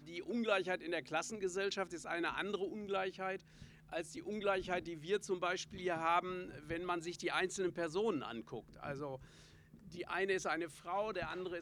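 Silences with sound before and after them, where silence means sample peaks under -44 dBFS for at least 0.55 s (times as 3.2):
9.16–9.95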